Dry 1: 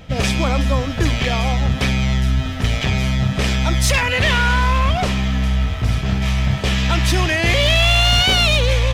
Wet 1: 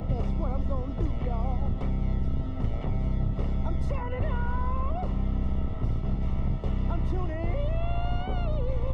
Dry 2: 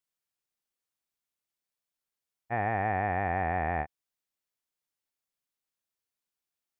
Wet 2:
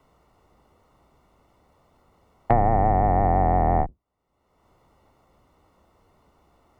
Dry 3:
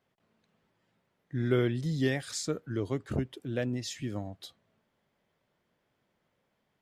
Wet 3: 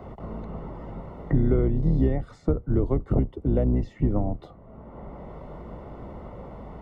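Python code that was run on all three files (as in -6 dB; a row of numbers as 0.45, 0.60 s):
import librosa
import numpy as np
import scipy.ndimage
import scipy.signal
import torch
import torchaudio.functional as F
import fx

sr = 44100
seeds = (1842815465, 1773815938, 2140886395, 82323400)

y = fx.octave_divider(x, sr, octaves=2, level_db=2.0)
y = scipy.signal.savgol_filter(y, 65, 4, mode='constant')
y = fx.band_squash(y, sr, depth_pct=100)
y = y * 10.0 ** (-26 / 20.0) / np.sqrt(np.mean(np.square(y)))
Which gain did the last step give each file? -13.0, +9.5, +6.5 dB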